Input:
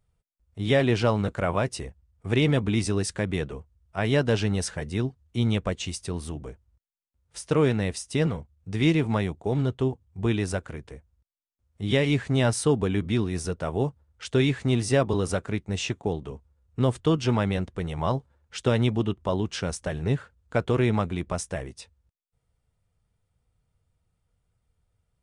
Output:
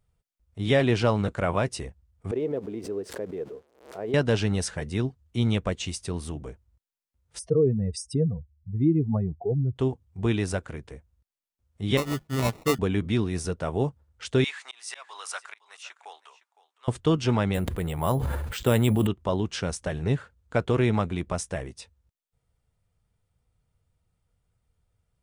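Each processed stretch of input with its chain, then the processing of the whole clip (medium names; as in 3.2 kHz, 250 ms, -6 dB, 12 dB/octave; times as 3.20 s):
2.31–4.14 s: zero-crossing glitches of -22.5 dBFS + band-pass filter 450 Hz, Q 2.8 + swell ahead of each attack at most 120 dB/s
7.39–9.76 s: spectral contrast enhancement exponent 2.6 + peaking EQ 730 Hz +13 dB 0.32 oct
11.97–12.79 s: hum notches 50/100/150 Hz + sample-rate reducer 1.6 kHz + upward expansion 2.5:1, over -36 dBFS
14.44–16.88 s: high-pass 930 Hz 24 dB/octave + slow attack 281 ms + delay 511 ms -18.5 dB
17.54–19.07 s: careless resampling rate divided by 4×, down filtered, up hold + decay stretcher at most 25 dB/s
whole clip: none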